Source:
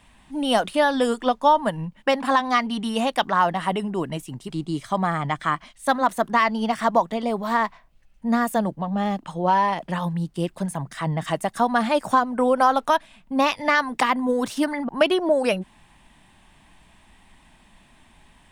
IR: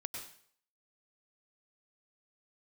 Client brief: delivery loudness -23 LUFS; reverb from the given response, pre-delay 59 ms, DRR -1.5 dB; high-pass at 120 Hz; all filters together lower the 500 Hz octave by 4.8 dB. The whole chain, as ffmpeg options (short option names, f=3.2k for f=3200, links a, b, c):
-filter_complex "[0:a]highpass=120,equalizer=f=500:t=o:g=-6,asplit=2[a][b];[1:a]atrim=start_sample=2205,adelay=59[c];[b][c]afir=irnorm=-1:irlink=0,volume=2.5dB[d];[a][d]amix=inputs=2:normalize=0,volume=-2dB"